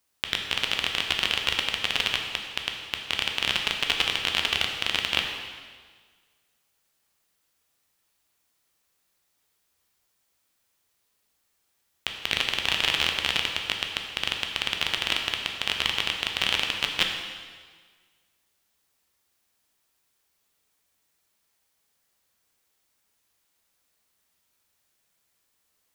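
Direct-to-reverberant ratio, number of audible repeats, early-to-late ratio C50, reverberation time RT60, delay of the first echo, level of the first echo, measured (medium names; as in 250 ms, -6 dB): 2.0 dB, no echo, 4.5 dB, 1.6 s, no echo, no echo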